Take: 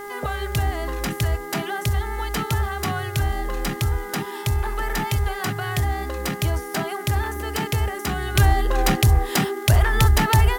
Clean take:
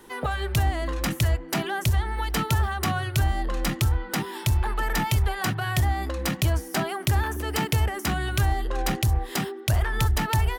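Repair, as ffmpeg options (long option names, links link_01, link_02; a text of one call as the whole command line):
ffmpeg -i in.wav -af "adeclick=threshold=4,bandreject=frequency=407.2:width_type=h:width=4,bandreject=frequency=814.4:width_type=h:width=4,bandreject=frequency=1221.6:width_type=h:width=4,bandreject=frequency=1628.8:width_type=h:width=4,bandreject=frequency=2036:width_type=h:width=4,agate=range=-21dB:threshold=-24dB,asetnsamples=nb_out_samples=441:pad=0,asendcmd='8.35 volume volume -6.5dB',volume=0dB" out.wav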